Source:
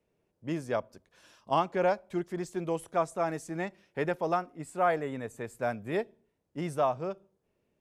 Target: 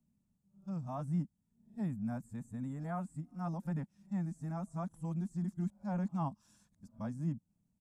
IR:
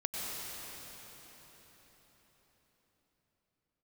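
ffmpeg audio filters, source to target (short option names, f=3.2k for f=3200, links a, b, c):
-filter_complex "[0:a]areverse,firequalizer=gain_entry='entry(130,0);entry(210,6);entry(390,-26);entry(820,-13);entry(2200,-21);entry(7700,0);entry(12000,-6)':delay=0.05:min_phase=1,acrossover=split=180|2100[a][b][c];[c]alimiter=level_in=35dB:limit=-24dB:level=0:latency=1,volume=-35dB[d];[a][b][d]amix=inputs=3:normalize=0,bandreject=f=3k:w=18,volume=1dB"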